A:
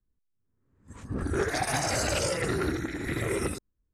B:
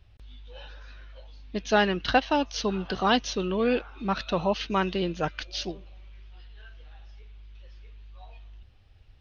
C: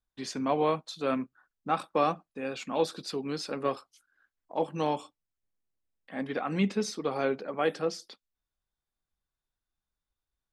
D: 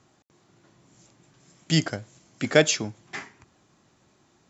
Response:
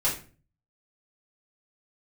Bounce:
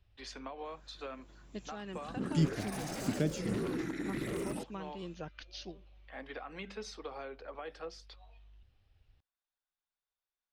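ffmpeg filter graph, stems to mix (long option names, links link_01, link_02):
-filter_complex "[0:a]highpass=frequency=160:width=0.5412,highpass=frequency=160:width=1.3066,aeval=exprs='0.0501*(abs(mod(val(0)/0.0501+3,4)-2)-1)':channel_layout=same,adelay=1050,volume=0dB[link_01];[1:a]volume=-11.5dB[link_02];[2:a]acrossover=split=460 5700:gain=0.141 1 0.2[link_03][link_04][link_05];[link_03][link_04][link_05]amix=inputs=3:normalize=0,bandreject=frequency=50:width_type=h:width=6,bandreject=frequency=100:width_type=h:width=6,bandreject=frequency=150:width_type=h:width=6,bandreject=frequency=200:width_type=h:width=6,volume=-3.5dB[link_06];[3:a]adelay=650,volume=-5dB[link_07];[link_02][link_06]amix=inputs=2:normalize=0,alimiter=level_in=3.5dB:limit=-24dB:level=0:latency=1:release=282,volume=-3.5dB,volume=0dB[link_08];[link_01][link_07][link_08]amix=inputs=3:normalize=0,acrossover=split=330[link_09][link_10];[link_10]acompressor=threshold=-42dB:ratio=6[link_11];[link_09][link_11]amix=inputs=2:normalize=0"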